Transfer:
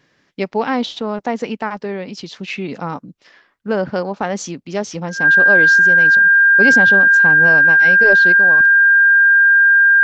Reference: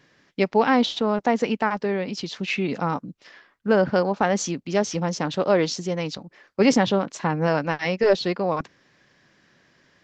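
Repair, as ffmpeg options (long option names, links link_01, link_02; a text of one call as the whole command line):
ffmpeg -i in.wav -af "bandreject=frequency=1600:width=30,asetnsamples=nb_out_samples=441:pad=0,asendcmd='8.32 volume volume 3.5dB',volume=0dB" out.wav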